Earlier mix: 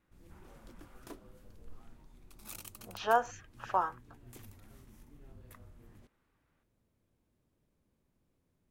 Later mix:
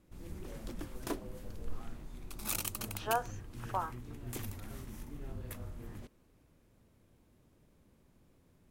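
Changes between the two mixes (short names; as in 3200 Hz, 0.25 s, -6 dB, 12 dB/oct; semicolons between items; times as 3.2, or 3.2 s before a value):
speech -5.5 dB; background +11.0 dB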